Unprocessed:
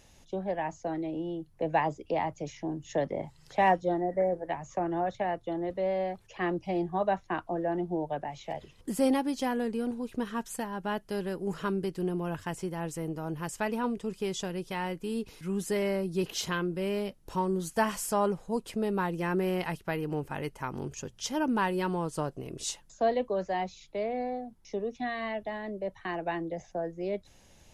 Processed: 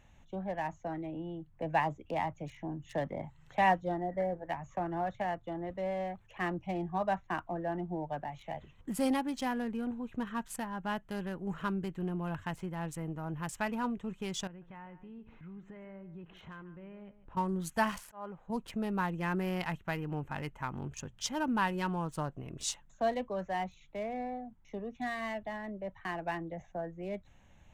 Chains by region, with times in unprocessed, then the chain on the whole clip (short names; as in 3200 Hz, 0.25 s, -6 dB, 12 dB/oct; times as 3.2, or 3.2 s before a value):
14.47–17.37 LPF 2100 Hz + compressor 2.5:1, threshold -48 dBFS + echo 0.147 s -14 dB
17.98–18.5 tone controls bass -7 dB, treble -10 dB + auto swell 0.417 s
whole clip: Wiener smoothing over 9 samples; bell 420 Hz -9.5 dB 1.1 oct